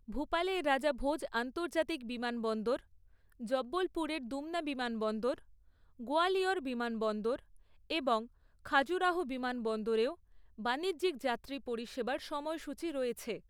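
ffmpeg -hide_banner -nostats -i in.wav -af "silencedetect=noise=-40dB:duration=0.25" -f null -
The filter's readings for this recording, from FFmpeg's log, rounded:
silence_start: 2.79
silence_end: 3.41 | silence_duration: 0.63
silence_start: 5.38
silence_end: 6.01 | silence_duration: 0.63
silence_start: 7.39
silence_end: 7.90 | silence_duration: 0.51
silence_start: 8.24
silence_end: 8.66 | silence_duration: 0.42
silence_start: 10.13
silence_end: 10.59 | silence_duration: 0.47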